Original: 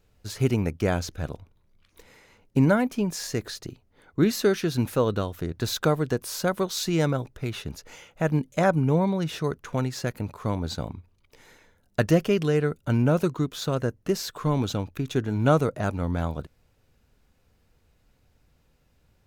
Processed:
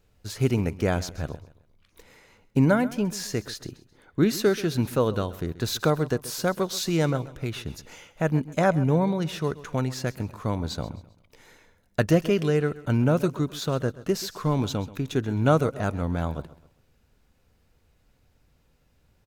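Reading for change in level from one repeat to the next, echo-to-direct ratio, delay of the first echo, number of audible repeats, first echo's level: -9.0 dB, -17.0 dB, 132 ms, 2, -17.5 dB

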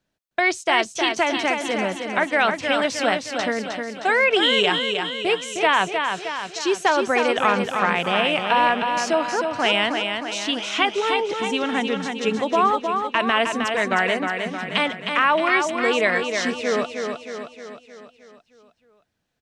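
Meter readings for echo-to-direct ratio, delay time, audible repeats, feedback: -4.0 dB, 311 ms, 6, 55%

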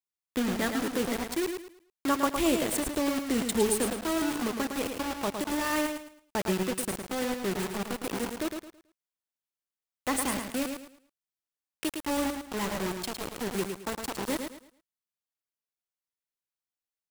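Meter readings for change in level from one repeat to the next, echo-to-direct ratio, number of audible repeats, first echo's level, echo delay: -11.0 dB, -5.5 dB, 3, -6.0 dB, 109 ms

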